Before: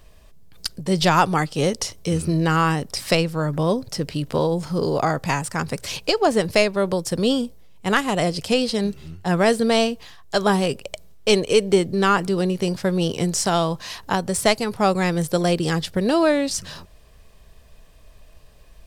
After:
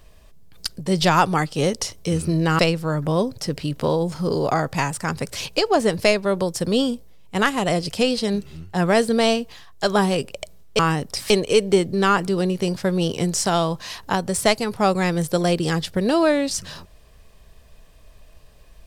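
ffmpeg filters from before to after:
-filter_complex "[0:a]asplit=4[s0][s1][s2][s3];[s0]atrim=end=2.592[s4];[s1]atrim=start=3.098:end=11.302[s5];[s2]atrim=start=2.588:end=3.102[s6];[s3]atrim=start=11.298[s7];[s4][s5]acrossfade=d=0.004:c1=hsin:c2=hsin[s8];[s8][s6]acrossfade=d=0.004:c1=hsin:c2=hsin[s9];[s9][s7]acrossfade=d=0.004:c1=hsin:c2=hsin"

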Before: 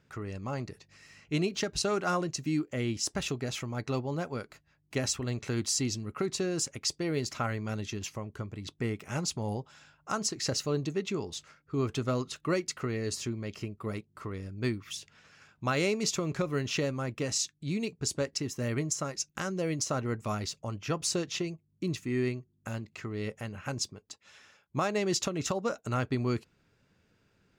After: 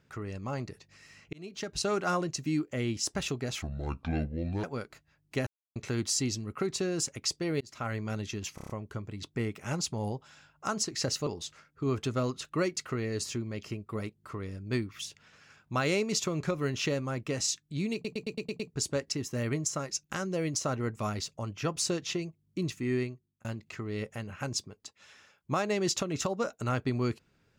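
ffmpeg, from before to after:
-filter_complex "[0:a]asplit=20[s0][s1][s2][s3][s4][s5][s6][s7][s8][s9][s10][s11][s12][s13][s14][s15][s16][s17][s18][s19];[s0]atrim=end=1.33,asetpts=PTS-STARTPTS,afade=t=out:st=1.326:d=0.004:c=hsin[s20];[s1]atrim=start=1.33:end=3.624,asetpts=PTS-STARTPTS,afade=t=in:d=0.57[s21];[s2]atrim=start=3.62:end=4.23,asetpts=PTS-STARTPTS,asetrate=26460,aresample=44100[s22];[s3]atrim=start=4.226:end=5.06,asetpts=PTS-STARTPTS,afade=t=out:st=0.83:d=0.004:c=hsin[s23];[s4]atrim=start=5.06:end=5.35,asetpts=PTS-STARTPTS,volume=0[s24];[s5]atrim=start=5.35:end=7.2,asetpts=PTS-STARTPTS,afade=t=in:d=0.004:c=hsin,afade=t=out:st=1.846:d=0.004:c=hsin[s25];[s6]atrim=start=7.2:end=8.172,asetpts=PTS-STARTPTS,afade=t=in:d=0.35[s26];[s7]atrim=start=8.138:end=8.172[s27];[s8]atrim=start=8.138:end=8.172[s28];[s9]atrim=start=8.138:end=8.172[s29];[s10]atrim=start=8.138:end=8.172[s30];[s11]atrim=start=8.138:end=10.712[s31];[s12]atrim=start=11.178:end=17.962[s32];[s13]atrim=start=17.848:end=17.962[s33];[s14]atrim=start=17.848:end=17.962[s34];[s15]atrim=start=17.848:end=17.962[s35];[s16]atrim=start=17.848:end=17.962[s36];[s17]atrim=start=17.848:end=17.962[s37];[s18]atrim=start=17.848:end=22.7,asetpts=PTS-STARTPTS,afade=t=out:st=4.362:d=0.49[s38];[s19]atrim=start=22.7,asetpts=PTS-STARTPTS,afade=t=in:d=0.004:c=hsin[s39];[s20][s21]concat=n=2:v=0:a=1[s40];[s40][s22]acrossfade=d=0.004:c1=hsin:c2=hsin[s41];[s23][s24][s25][s26]concat=n=4:v=0:a=1[s42];[s41][s42]acrossfade=d=0.004:c1=hsin:c2=hsin[s43];[s43][s27]acrossfade=d=0.004:c1=hsin:c2=hsin[s44];[s44][s28]acrossfade=d=0.004:c1=hsin:c2=hsin[s45];[s45][s29]acrossfade=d=0.004:c1=hsin:c2=hsin[s46];[s46][s30]acrossfade=d=0.004:c1=hsin:c2=hsin[s47];[s47][s31]acrossfade=d=0.004:c1=hsin:c2=hsin[s48];[s48][s32]acrossfade=d=0.004:c1=hsin:c2=hsin[s49];[s49][s33]acrossfade=d=0.004:c1=hsin:c2=hsin[s50];[s50][s34]acrossfade=d=0.004:c1=hsin:c2=hsin[s51];[s51][s35]acrossfade=d=0.004:c1=hsin:c2=hsin[s52];[s52][s36]acrossfade=d=0.004:c1=hsin:c2=hsin[s53];[s53][s37]acrossfade=d=0.004:c1=hsin:c2=hsin[s54];[s38][s39]concat=n=2:v=0:a=1[s55];[s54][s55]acrossfade=d=0.004:c1=hsin:c2=hsin"

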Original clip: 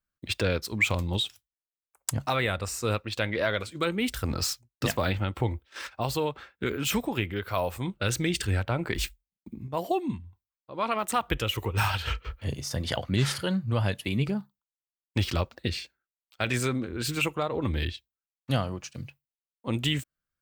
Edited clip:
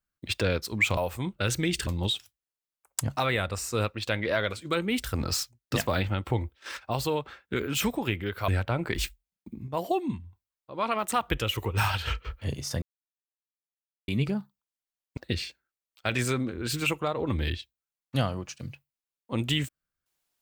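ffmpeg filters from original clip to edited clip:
-filter_complex "[0:a]asplit=7[s0][s1][s2][s3][s4][s5][s6];[s0]atrim=end=0.972[s7];[s1]atrim=start=7.578:end=8.482[s8];[s2]atrim=start=0.968:end=7.582[s9];[s3]atrim=start=8.478:end=12.82,asetpts=PTS-STARTPTS,afade=t=out:st=4.338:d=0.004:c=hsin[s10];[s4]atrim=start=12.82:end=14.08,asetpts=PTS-STARTPTS,volume=0[s11];[s5]atrim=start=14.08:end=15.172,asetpts=PTS-STARTPTS,afade=t=in:d=0.004:c=hsin[s12];[s6]atrim=start=15.518[s13];[s7][s8]acrossfade=d=0.004:c1=hsin:c2=hsin[s14];[s14][s9]acrossfade=d=0.004:c1=hsin:c2=hsin[s15];[s10][s11][s12]concat=n=3:v=0:a=1[s16];[s15][s16]acrossfade=d=0.004:c1=hsin:c2=hsin[s17];[s17][s13]acrossfade=d=0.004:c1=hsin:c2=hsin"

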